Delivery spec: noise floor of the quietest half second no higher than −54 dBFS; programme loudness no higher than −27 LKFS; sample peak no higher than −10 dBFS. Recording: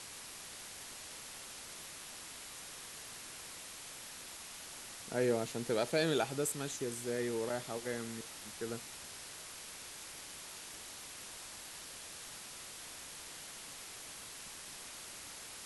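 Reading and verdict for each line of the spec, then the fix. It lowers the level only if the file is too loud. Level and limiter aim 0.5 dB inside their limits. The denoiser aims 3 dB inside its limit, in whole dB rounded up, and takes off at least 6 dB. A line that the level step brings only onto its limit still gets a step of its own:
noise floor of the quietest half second −49 dBFS: out of spec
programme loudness −41.0 LKFS: in spec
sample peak −19.0 dBFS: in spec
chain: broadband denoise 8 dB, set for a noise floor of −49 dBFS

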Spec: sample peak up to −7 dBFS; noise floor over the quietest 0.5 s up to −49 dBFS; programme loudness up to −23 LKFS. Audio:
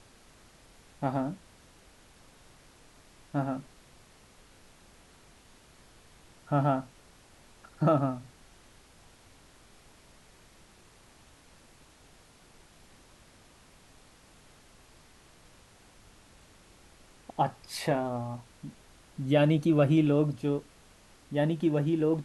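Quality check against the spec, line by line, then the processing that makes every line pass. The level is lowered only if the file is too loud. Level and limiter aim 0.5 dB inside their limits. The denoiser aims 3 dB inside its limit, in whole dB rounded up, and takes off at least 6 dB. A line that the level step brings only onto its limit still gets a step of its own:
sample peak −12.0 dBFS: in spec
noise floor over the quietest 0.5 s −58 dBFS: in spec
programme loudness −29.0 LKFS: in spec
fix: no processing needed

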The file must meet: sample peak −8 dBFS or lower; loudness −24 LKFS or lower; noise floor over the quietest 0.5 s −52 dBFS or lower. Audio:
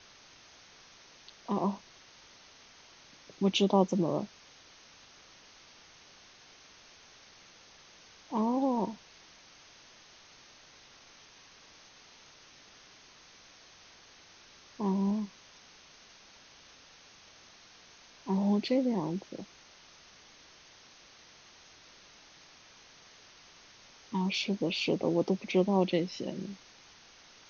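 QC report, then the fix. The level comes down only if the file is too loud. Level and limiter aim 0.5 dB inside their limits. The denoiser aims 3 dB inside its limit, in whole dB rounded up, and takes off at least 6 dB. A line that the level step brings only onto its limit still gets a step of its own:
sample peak −11.5 dBFS: in spec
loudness −31.0 LKFS: in spec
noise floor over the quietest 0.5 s −57 dBFS: in spec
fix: no processing needed

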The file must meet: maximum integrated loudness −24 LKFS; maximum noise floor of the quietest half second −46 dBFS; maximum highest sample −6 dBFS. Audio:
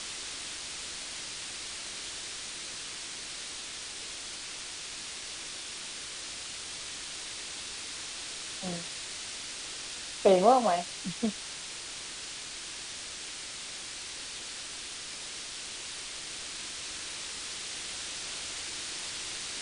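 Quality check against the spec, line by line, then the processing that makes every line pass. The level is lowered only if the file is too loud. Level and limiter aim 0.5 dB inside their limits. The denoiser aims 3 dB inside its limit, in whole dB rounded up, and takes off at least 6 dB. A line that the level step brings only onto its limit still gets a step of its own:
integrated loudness −34.5 LKFS: in spec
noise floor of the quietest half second −41 dBFS: out of spec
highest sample −10.0 dBFS: in spec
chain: broadband denoise 8 dB, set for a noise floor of −41 dBFS

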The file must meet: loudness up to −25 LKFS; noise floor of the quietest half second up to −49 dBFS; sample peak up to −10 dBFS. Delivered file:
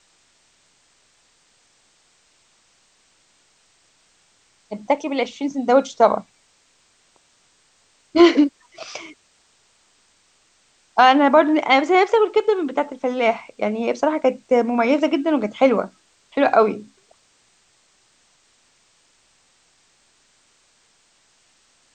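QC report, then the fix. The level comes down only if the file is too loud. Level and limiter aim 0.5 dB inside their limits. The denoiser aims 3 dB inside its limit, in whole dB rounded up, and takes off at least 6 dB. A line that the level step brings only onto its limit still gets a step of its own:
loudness −18.5 LKFS: out of spec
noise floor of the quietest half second −60 dBFS: in spec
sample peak −2.5 dBFS: out of spec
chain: level −7 dB
brickwall limiter −10.5 dBFS

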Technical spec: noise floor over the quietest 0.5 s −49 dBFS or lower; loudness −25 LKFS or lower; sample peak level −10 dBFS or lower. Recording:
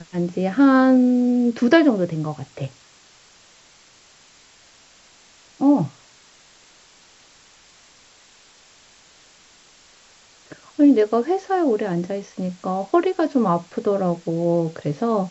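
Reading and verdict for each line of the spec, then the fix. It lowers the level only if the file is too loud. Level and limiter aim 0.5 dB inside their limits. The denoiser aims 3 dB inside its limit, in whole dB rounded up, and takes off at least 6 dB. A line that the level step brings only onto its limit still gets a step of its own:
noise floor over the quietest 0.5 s −52 dBFS: in spec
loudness −20.0 LKFS: out of spec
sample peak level −2.0 dBFS: out of spec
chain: level −5.5 dB
brickwall limiter −10.5 dBFS

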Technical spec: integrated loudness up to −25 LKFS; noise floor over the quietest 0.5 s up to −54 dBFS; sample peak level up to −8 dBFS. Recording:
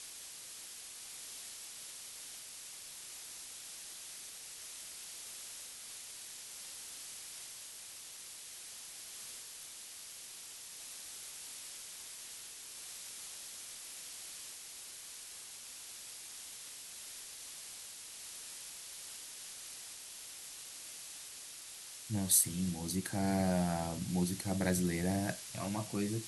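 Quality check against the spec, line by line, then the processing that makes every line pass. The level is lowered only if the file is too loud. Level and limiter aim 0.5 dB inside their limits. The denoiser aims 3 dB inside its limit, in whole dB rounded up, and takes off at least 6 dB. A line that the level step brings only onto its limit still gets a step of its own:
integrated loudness −40.5 LKFS: in spec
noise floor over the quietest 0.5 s −50 dBFS: out of spec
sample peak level −15.5 dBFS: in spec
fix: broadband denoise 7 dB, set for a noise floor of −50 dBFS

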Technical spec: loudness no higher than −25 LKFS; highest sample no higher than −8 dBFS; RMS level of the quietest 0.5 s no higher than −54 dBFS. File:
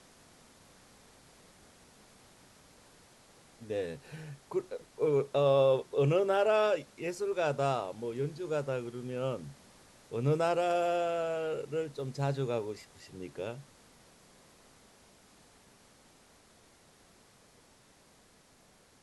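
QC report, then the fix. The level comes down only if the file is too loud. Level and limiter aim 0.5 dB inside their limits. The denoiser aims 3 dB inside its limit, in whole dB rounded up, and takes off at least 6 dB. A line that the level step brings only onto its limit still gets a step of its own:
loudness −32.0 LKFS: in spec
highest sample −16.0 dBFS: in spec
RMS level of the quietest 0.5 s −63 dBFS: in spec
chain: no processing needed

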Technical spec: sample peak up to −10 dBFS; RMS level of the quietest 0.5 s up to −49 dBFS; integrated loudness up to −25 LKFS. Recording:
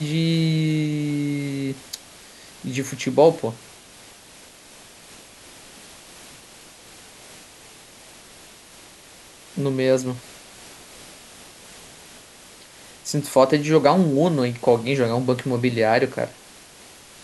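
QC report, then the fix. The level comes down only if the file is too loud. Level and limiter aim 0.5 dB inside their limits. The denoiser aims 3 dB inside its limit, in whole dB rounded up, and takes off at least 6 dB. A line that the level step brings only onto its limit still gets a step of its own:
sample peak −3.5 dBFS: out of spec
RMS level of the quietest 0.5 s −47 dBFS: out of spec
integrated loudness −21.0 LKFS: out of spec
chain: level −4.5 dB
brickwall limiter −10.5 dBFS

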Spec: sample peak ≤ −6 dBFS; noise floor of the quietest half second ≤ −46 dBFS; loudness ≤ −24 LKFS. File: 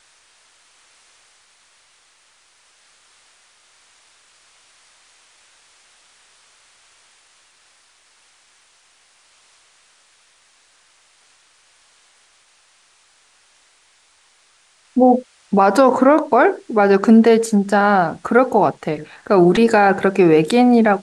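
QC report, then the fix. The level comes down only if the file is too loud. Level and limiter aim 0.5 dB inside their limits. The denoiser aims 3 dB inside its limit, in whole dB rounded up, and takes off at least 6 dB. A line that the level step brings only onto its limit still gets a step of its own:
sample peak −2.5 dBFS: out of spec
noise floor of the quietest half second −56 dBFS: in spec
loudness −14.5 LKFS: out of spec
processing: level −10 dB

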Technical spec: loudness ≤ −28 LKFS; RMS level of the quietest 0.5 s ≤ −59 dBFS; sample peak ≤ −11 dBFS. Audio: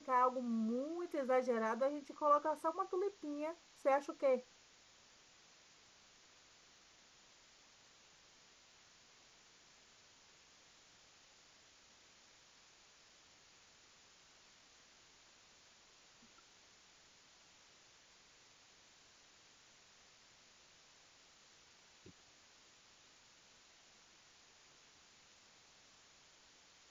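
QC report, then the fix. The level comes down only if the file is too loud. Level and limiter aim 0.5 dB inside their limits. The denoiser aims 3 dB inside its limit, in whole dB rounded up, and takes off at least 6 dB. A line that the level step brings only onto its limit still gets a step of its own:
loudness −38.0 LKFS: in spec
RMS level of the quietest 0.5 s −66 dBFS: in spec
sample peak −21.0 dBFS: in spec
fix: no processing needed

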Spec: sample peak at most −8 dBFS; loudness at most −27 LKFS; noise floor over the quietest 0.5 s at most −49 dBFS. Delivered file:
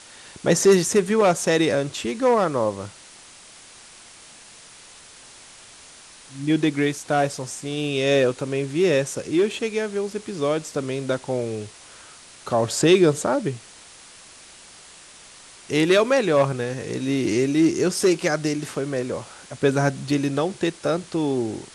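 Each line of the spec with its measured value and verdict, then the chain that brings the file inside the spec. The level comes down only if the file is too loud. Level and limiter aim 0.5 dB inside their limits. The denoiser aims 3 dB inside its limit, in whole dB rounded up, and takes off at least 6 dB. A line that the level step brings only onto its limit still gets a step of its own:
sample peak −5.0 dBFS: out of spec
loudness −22.0 LKFS: out of spec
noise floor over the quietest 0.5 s −46 dBFS: out of spec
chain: level −5.5 dB

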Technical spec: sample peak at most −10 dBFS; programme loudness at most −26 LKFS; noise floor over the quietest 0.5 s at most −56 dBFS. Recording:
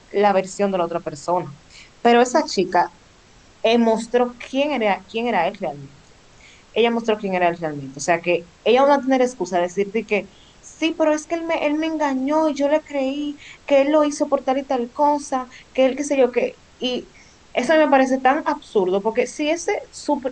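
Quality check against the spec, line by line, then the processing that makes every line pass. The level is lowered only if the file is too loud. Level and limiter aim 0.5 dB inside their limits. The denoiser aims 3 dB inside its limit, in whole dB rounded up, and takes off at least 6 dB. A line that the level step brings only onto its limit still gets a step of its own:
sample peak −5.0 dBFS: out of spec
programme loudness −20.5 LKFS: out of spec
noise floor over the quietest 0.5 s −50 dBFS: out of spec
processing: broadband denoise 6 dB, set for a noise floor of −50 dBFS
level −6 dB

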